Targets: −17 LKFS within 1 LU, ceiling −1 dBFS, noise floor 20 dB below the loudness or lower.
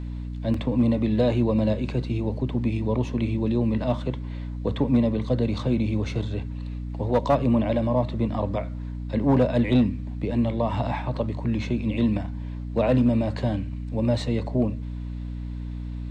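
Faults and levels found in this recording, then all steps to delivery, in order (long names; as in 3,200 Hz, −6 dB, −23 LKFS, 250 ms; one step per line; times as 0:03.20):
number of dropouts 1; longest dropout 2.7 ms; mains hum 60 Hz; hum harmonics up to 300 Hz; level of the hum −30 dBFS; integrated loudness −25.5 LKFS; sample peak −11.0 dBFS; target loudness −17.0 LKFS
→ repair the gap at 0:00.54, 2.7 ms
mains-hum notches 60/120/180/240/300 Hz
level +8.5 dB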